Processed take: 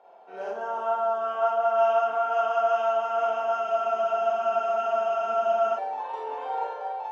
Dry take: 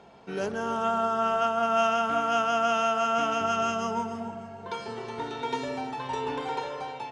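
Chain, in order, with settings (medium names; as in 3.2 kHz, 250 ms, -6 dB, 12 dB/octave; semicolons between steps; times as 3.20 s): ladder high-pass 580 Hz, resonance 45%; tilt EQ -4.5 dB/octave; Schroeder reverb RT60 0.42 s, combs from 32 ms, DRR -4 dB; spectral freeze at 3.65 s, 2.12 s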